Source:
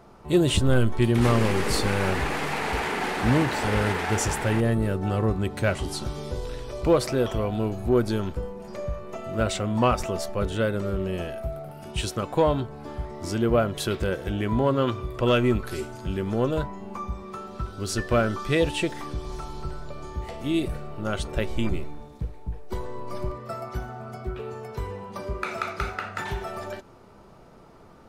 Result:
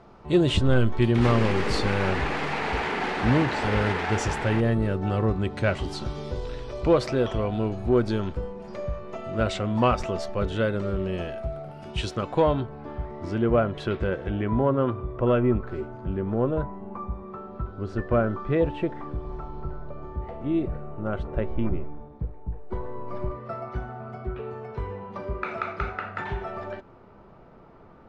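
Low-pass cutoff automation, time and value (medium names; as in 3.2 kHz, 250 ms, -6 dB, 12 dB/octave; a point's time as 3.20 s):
12.32 s 4.7 kHz
12.82 s 2.4 kHz
14.25 s 2.4 kHz
14.88 s 1.3 kHz
22.42 s 1.3 kHz
23.48 s 2.4 kHz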